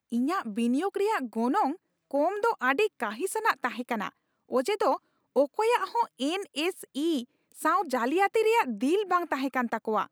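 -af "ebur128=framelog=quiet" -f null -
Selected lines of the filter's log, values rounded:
Integrated loudness:
  I:         -28.0 LUFS
  Threshold: -38.2 LUFS
Loudness range:
  LRA:         1.8 LU
  Threshold: -48.4 LUFS
  LRA low:   -29.2 LUFS
  LRA high:  -27.4 LUFS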